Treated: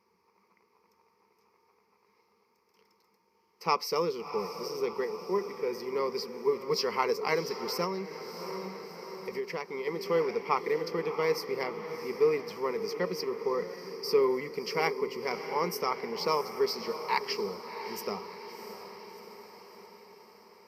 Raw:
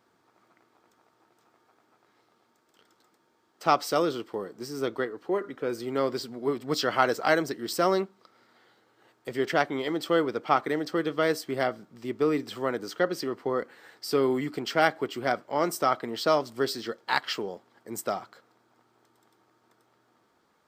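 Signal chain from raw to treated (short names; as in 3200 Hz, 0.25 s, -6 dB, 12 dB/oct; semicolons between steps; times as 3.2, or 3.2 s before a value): ripple EQ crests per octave 0.84, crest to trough 17 dB; diffused feedback echo 0.686 s, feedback 59%, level -10 dB; 7.84–9.87 compressor 6:1, threshold -25 dBFS, peak gain reduction 8.5 dB; gain -6.5 dB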